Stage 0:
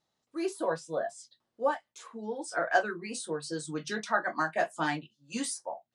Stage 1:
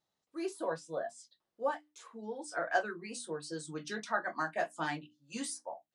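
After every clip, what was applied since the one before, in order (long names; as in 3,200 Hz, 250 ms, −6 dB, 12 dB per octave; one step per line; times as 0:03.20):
mains-hum notches 60/120/180/240/300 Hz
level −5 dB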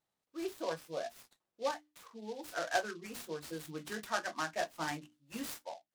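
short delay modulated by noise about 3,700 Hz, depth 0.043 ms
level −2 dB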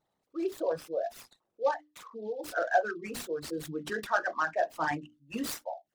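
spectral envelope exaggerated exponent 2
level +7 dB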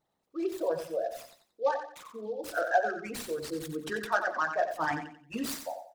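repeating echo 90 ms, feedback 30%, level −8.5 dB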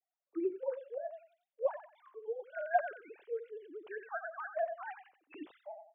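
three sine waves on the formant tracks
level −7 dB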